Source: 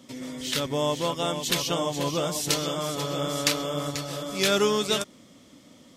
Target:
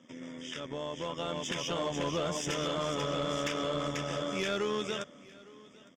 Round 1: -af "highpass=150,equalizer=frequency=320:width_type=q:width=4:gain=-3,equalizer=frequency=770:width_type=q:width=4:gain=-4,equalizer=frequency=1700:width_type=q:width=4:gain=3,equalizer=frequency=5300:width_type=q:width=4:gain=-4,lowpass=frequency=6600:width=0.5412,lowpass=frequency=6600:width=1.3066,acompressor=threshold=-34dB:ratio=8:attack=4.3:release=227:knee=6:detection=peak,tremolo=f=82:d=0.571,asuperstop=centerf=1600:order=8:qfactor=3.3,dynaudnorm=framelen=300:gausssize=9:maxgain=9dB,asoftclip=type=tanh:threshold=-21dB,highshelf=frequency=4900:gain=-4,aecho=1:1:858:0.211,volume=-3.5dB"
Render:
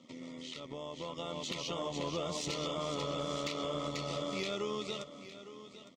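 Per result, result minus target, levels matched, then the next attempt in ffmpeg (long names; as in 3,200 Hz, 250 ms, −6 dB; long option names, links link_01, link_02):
downward compressor: peak gain reduction +6 dB; echo-to-direct +8.5 dB; 2,000 Hz band −2.5 dB
-af "highpass=150,equalizer=frequency=320:width_type=q:width=4:gain=-3,equalizer=frequency=770:width_type=q:width=4:gain=-4,equalizer=frequency=1700:width_type=q:width=4:gain=3,equalizer=frequency=5300:width_type=q:width=4:gain=-4,lowpass=frequency=6600:width=0.5412,lowpass=frequency=6600:width=1.3066,acompressor=threshold=-27dB:ratio=8:attack=4.3:release=227:knee=6:detection=peak,tremolo=f=82:d=0.571,asuperstop=centerf=1600:order=8:qfactor=3.3,dynaudnorm=framelen=300:gausssize=9:maxgain=9dB,asoftclip=type=tanh:threshold=-21dB,highshelf=frequency=4900:gain=-4,aecho=1:1:858:0.211,volume=-3.5dB"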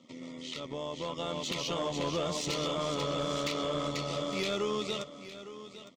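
echo-to-direct +8.5 dB; 2,000 Hz band −2.0 dB
-af "highpass=150,equalizer=frequency=320:width_type=q:width=4:gain=-3,equalizer=frequency=770:width_type=q:width=4:gain=-4,equalizer=frequency=1700:width_type=q:width=4:gain=3,equalizer=frequency=5300:width_type=q:width=4:gain=-4,lowpass=frequency=6600:width=0.5412,lowpass=frequency=6600:width=1.3066,acompressor=threshold=-27dB:ratio=8:attack=4.3:release=227:knee=6:detection=peak,tremolo=f=82:d=0.571,asuperstop=centerf=1600:order=8:qfactor=3.3,dynaudnorm=framelen=300:gausssize=9:maxgain=9dB,asoftclip=type=tanh:threshold=-21dB,highshelf=frequency=4900:gain=-4,aecho=1:1:858:0.0794,volume=-3.5dB"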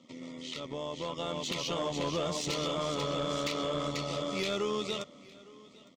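2,000 Hz band −2.5 dB
-af "highpass=150,equalizer=frequency=320:width_type=q:width=4:gain=-3,equalizer=frequency=770:width_type=q:width=4:gain=-4,equalizer=frequency=1700:width_type=q:width=4:gain=3,equalizer=frequency=5300:width_type=q:width=4:gain=-4,lowpass=frequency=6600:width=0.5412,lowpass=frequency=6600:width=1.3066,acompressor=threshold=-27dB:ratio=8:attack=4.3:release=227:knee=6:detection=peak,tremolo=f=82:d=0.571,asuperstop=centerf=4200:order=8:qfactor=3.3,dynaudnorm=framelen=300:gausssize=9:maxgain=9dB,asoftclip=type=tanh:threshold=-21dB,highshelf=frequency=4900:gain=-4,aecho=1:1:858:0.0794,volume=-3.5dB"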